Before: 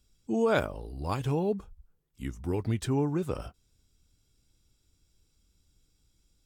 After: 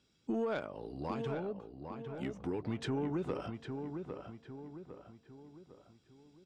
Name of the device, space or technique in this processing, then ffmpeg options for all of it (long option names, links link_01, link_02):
AM radio: -filter_complex "[0:a]highpass=170,lowpass=3900,acompressor=threshold=-36dB:ratio=6,asoftclip=type=tanh:threshold=-30.5dB,tremolo=f=0.31:d=0.38,asplit=2[link_01][link_02];[link_02]adelay=804,lowpass=frequency=2300:poles=1,volume=-6dB,asplit=2[link_03][link_04];[link_04]adelay=804,lowpass=frequency=2300:poles=1,volume=0.46,asplit=2[link_05][link_06];[link_06]adelay=804,lowpass=frequency=2300:poles=1,volume=0.46,asplit=2[link_07][link_08];[link_08]adelay=804,lowpass=frequency=2300:poles=1,volume=0.46,asplit=2[link_09][link_10];[link_10]adelay=804,lowpass=frequency=2300:poles=1,volume=0.46,asplit=2[link_11][link_12];[link_12]adelay=804,lowpass=frequency=2300:poles=1,volume=0.46[link_13];[link_01][link_03][link_05][link_07][link_09][link_11][link_13]amix=inputs=7:normalize=0,volume=5dB"